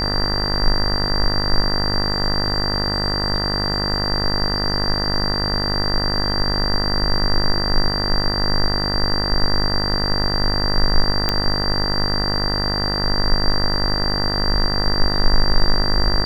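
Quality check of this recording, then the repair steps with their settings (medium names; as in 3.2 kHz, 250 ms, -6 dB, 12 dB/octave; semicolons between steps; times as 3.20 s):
buzz 50 Hz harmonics 40 -24 dBFS
whine 4.7 kHz -22 dBFS
11.29 s: pop -4 dBFS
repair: de-click; de-hum 50 Hz, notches 40; band-stop 4.7 kHz, Q 30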